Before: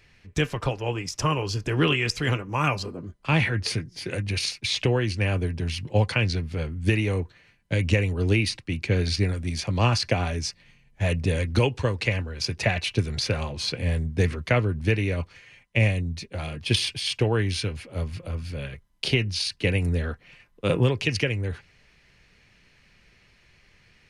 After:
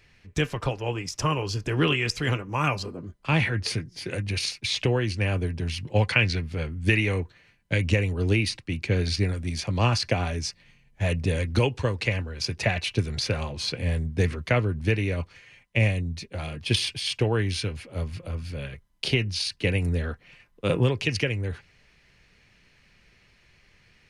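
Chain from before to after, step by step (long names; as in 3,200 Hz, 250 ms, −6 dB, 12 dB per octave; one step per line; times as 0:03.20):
0:05.95–0:07.78: dynamic equaliser 2,100 Hz, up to +7 dB, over −42 dBFS, Q 1.1
level −1 dB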